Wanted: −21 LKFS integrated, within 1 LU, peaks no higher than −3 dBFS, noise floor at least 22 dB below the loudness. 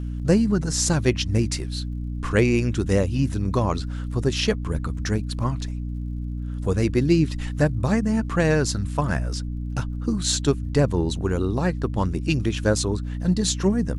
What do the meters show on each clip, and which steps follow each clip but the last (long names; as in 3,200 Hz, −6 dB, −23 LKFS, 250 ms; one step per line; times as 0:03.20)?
crackle rate 57 per second; mains hum 60 Hz; hum harmonics up to 300 Hz; level of the hum −26 dBFS; integrated loudness −23.5 LKFS; sample peak −5.5 dBFS; target loudness −21.0 LKFS
→ click removal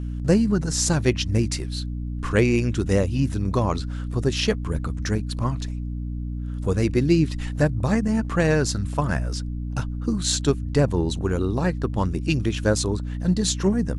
crackle rate 0.43 per second; mains hum 60 Hz; hum harmonics up to 300 Hz; level of the hum −26 dBFS
→ hum removal 60 Hz, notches 5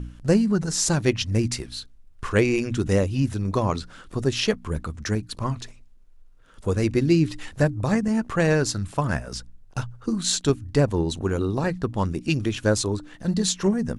mains hum none found; integrated loudness −24.0 LKFS; sample peak −6.5 dBFS; target loudness −21.0 LKFS
→ level +3 dB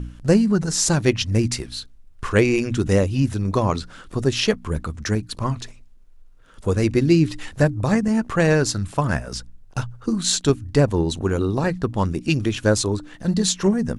integrated loudness −21.0 LKFS; sample peak −3.5 dBFS; background noise floor −47 dBFS